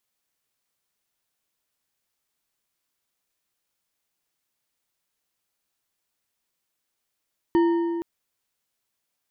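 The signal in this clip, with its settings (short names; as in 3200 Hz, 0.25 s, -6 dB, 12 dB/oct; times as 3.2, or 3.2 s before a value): metal hit bar, length 0.47 s, lowest mode 338 Hz, decay 2.40 s, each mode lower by 10 dB, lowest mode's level -15 dB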